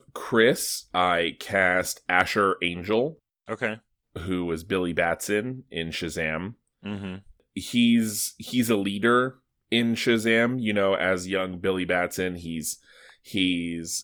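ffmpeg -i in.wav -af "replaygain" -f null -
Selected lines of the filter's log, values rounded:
track_gain = +4.2 dB
track_peak = 0.407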